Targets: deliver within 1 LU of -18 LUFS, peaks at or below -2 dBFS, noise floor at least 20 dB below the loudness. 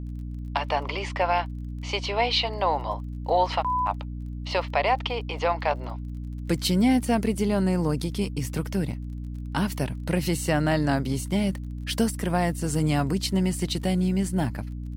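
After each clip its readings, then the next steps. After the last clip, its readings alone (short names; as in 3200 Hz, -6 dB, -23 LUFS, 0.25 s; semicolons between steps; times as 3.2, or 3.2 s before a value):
ticks 25/s; hum 60 Hz; harmonics up to 300 Hz; hum level -31 dBFS; loudness -26.5 LUFS; peak -11.0 dBFS; loudness target -18.0 LUFS
-> de-click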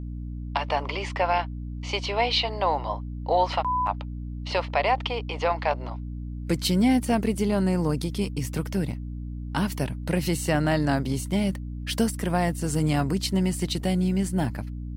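ticks 0.27/s; hum 60 Hz; harmonics up to 300 Hz; hum level -31 dBFS
-> notches 60/120/180/240/300 Hz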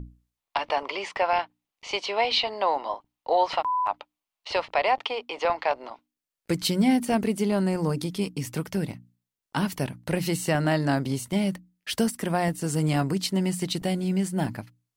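hum none; loudness -26.5 LUFS; peak -12.0 dBFS; loudness target -18.0 LUFS
-> gain +8.5 dB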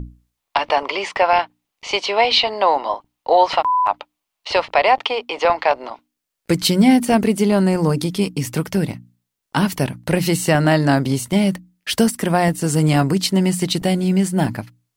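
loudness -18.0 LUFS; peak -3.5 dBFS; noise floor -80 dBFS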